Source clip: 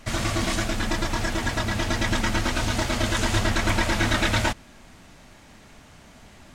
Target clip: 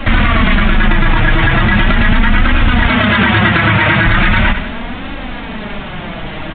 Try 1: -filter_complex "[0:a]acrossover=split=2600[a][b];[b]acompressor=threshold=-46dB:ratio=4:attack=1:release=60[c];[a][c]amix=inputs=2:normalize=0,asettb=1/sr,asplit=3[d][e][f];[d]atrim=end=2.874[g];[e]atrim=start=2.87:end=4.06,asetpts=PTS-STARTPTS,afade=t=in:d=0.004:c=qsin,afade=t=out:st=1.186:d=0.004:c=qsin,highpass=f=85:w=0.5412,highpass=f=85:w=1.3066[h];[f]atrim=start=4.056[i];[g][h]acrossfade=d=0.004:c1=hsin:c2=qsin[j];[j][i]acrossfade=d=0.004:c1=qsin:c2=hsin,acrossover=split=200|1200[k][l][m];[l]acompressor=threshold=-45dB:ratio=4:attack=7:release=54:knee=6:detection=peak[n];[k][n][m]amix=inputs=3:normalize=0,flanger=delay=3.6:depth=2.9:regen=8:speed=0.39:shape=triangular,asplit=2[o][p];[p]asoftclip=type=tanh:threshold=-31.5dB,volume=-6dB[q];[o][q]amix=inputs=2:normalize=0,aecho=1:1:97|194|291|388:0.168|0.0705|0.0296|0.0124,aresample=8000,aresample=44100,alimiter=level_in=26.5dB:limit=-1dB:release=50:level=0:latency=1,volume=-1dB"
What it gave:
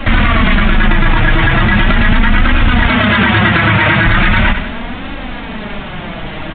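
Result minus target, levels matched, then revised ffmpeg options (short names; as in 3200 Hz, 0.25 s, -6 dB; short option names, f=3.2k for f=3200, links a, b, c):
soft clip: distortion -5 dB
-filter_complex "[0:a]acrossover=split=2600[a][b];[b]acompressor=threshold=-46dB:ratio=4:attack=1:release=60[c];[a][c]amix=inputs=2:normalize=0,asettb=1/sr,asplit=3[d][e][f];[d]atrim=end=2.874[g];[e]atrim=start=2.87:end=4.06,asetpts=PTS-STARTPTS,afade=t=in:d=0.004:c=qsin,afade=t=out:st=1.186:d=0.004:c=qsin,highpass=f=85:w=0.5412,highpass=f=85:w=1.3066[h];[f]atrim=start=4.056[i];[g][h]acrossfade=d=0.004:c1=hsin:c2=qsin[j];[j][i]acrossfade=d=0.004:c1=qsin:c2=hsin,acrossover=split=200|1200[k][l][m];[l]acompressor=threshold=-45dB:ratio=4:attack=7:release=54:knee=6:detection=peak[n];[k][n][m]amix=inputs=3:normalize=0,flanger=delay=3.6:depth=2.9:regen=8:speed=0.39:shape=triangular,asplit=2[o][p];[p]asoftclip=type=tanh:threshold=-42dB,volume=-6dB[q];[o][q]amix=inputs=2:normalize=0,aecho=1:1:97|194|291|388:0.168|0.0705|0.0296|0.0124,aresample=8000,aresample=44100,alimiter=level_in=26.5dB:limit=-1dB:release=50:level=0:latency=1,volume=-1dB"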